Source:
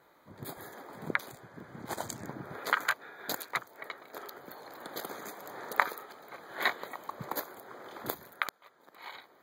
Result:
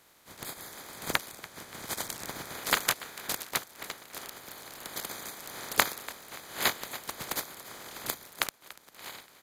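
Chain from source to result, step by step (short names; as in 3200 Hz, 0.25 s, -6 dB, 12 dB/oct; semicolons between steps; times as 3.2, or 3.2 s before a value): spectral contrast lowered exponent 0.29; frequency-shifting echo 0.288 s, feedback 42%, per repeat +41 Hz, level -18 dB; downsampling 32000 Hz; gain +2.5 dB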